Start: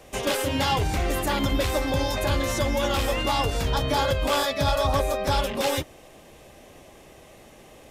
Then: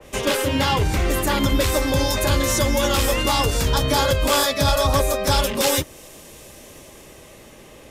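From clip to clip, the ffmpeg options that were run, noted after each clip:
-filter_complex "[0:a]equalizer=f=730:w=5.8:g=-8.5,acrossover=split=170|980|4800[a][b][c][d];[d]dynaudnorm=f=420:g=7:m=10.5dB[e];[a][b][c][e]amix=inputs=4:normalize=0,adynamicequalizer=threshold=0.0158:dfrequency=2800:dqfactor=0.7:tfrequency=2800:tqfactor=0.7:attack=5:release=100:ratio=0.375:range=2:mode=cutabove:tftype=highshelf,volume=5dB"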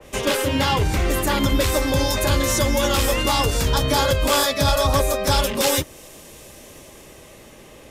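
-af anull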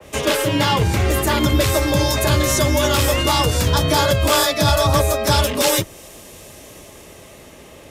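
-af "afreqshift=25,volume=2.5dB"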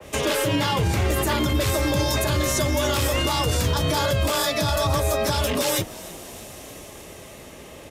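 -filter_complex "[0:a]alimiter=limit=-13.5dB:level=0:latency=1:release=53,asplit=6[a][b][c][d][e][f];[b]adelay=311,afreqshift=52,volume=-20dB[g];[c]adelay=622,afreqshift=104,volume=-24.6dB[h];[d]adelay=933,afreqshift=156,volume=-29.2dB[i];[e]adelay=1244,afreqshift=208,volume=-33.7dB[j];[f]adelay=1555,afreqshift=260,volume=-38.3dB[k];[a][g][h][i][j][k]amix=inputs=6:normalize=0"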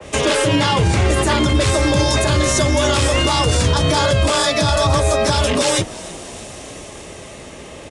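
-af "aresample=22050,aresample=44100,volume=6.5dB"

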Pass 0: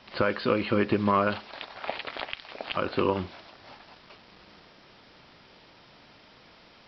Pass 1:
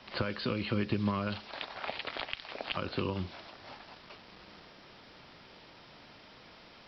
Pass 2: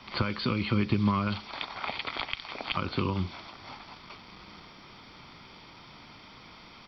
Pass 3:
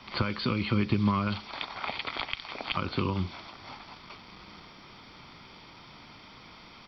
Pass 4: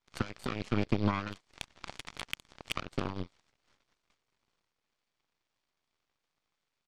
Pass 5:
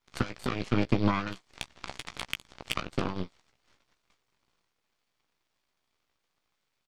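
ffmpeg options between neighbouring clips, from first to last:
-filter_complex "[0:a]acrossover=split=200|3000[a][b][c];[b]acompressor=threshold=-35dB:ratio=5[d];[a][d][c]amix=inputs=3:normalize=0"
-af "aecho=1:1:0.9:0.46,volume=3.5dB"
-af anull
-af "aeval=exprs='0.282*(cos(1*acos(clip(val(0)/0.282,-1,1)))-cos(1*PI/2))+0.02*(cos(3*acos(clip(val(0)/0.282,-1,1)))-cos(3*PI/2))+0.0316*(cos(6*acos(clip(val(0)/0.282,-1,1)))-cos(6*PI/2))+0.0316*(cos(7*acos(clip(val(0)/0.282,-1,1)))-cos(7*PI/2))+0.00562*(cos(8*acos(clip(val(0)/0.282,-1,1)))-cos(8*PI/2))':c=same,volume=-2dB"
-filter_complex "[0:a]asplit=2[a][b];[b]adelay=16,volume=-9dB[c];[a][c]amix=inputs=2:normalize=0,volume=3.5dB"

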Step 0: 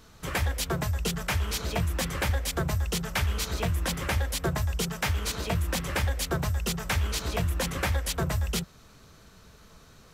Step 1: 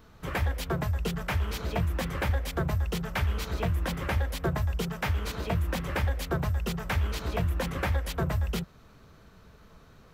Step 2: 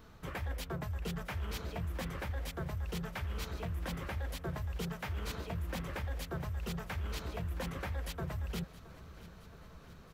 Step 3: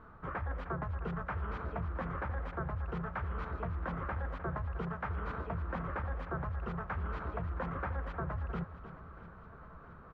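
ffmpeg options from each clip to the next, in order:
-af "equalizer=f=8k:w=0.46:g=-11.5"
-af "areverse,acompressor=threshold=-34dB:ratio=6,areverse,aecho=1:1:670|1340|2010|2680|3350|4020:0.133|0.08|0.048|0.0288|0.0173|0.0104,volume=-1.5dB"
-af "lowpass=f=1.3k:t=q:w=2.6,aecho=1:1:307:0.237"

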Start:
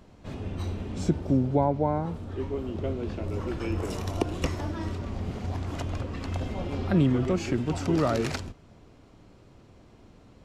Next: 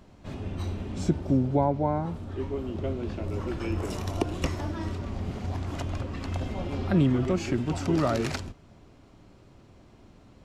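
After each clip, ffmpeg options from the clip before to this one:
-af "bandreject=f=470:w=12"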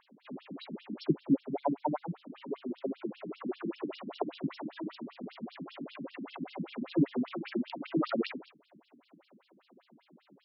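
-af "afftfilt=real='re*between(b*sr/1024,210*pow(4000/210,0.5+0.5*sin(2*PI*5.1*pts/sr))/1.41,210*pow(4000/210,0.5+0.5*sin(2*PI*5.1*pts/sr))*1.41)':imag='im*between(b*sr/1024,210*pow(4000/210,0.5+0.5*sin(2*PI*5.1*pts/sr))/1.41,210*pow(4000/210,0.5+0.5*sin(2*PI*5.1*pts/sr))*1.41)':win_size=1024:overlap=0.75,volume=2dB"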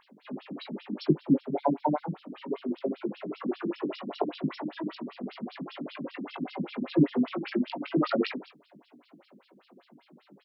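-filter_complex "[0:a]asplit=2[a][b];[b]adelay=20,volume=-9dB[c];[a][c]amix=inputs=2:normalize=0,volume=4.5dB"

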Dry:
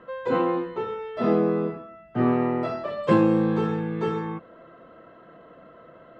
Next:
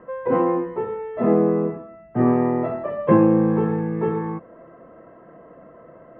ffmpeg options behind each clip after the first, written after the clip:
-af "lowpass=f=1.9k:w=0.5412,lowpass=f=1.9k:w=1.3066,equalizer=f=1.4k:w=5.1:g=-10.5,volume=4dB"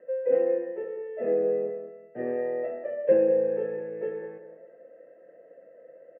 -filter_complex "[0:a]asplit=3[a][b][c];[a]bandpass=f=530:t=q:w=8,volume=0dB[d];[b]bandpass=f=1.84k:t=q:w=8,volume=-6dB[e];[c]bandpass=f=2.48k:t=q:w=8,volume=-9dB[f];[d][e][f]amix=inputs=3:normalize=0,asplit=2[g][h];[h]adelay=193,lowpass=f=1.7k:p=1,volume=-10dB,asplit=2[i][j];[j]adelay=193,lowpass=f=1.7k:p=1,volume=0.3,asplit=2[k][l];[l]adelay=193,lowpass=f=1.7k:p=1,volume=0.3[m];[g][i][k][m]amix=inputs=4:normalize=0,volume=1.5dB"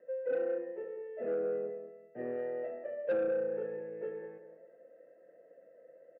-af "asoftclip=type=tanh:threshold=-19dB,volume=-7dB"

